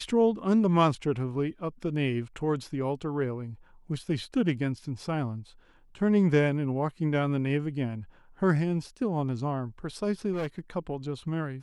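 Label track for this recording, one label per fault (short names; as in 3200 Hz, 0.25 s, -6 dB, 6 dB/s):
10.320000	10.590000	clipped -27.5 dBFS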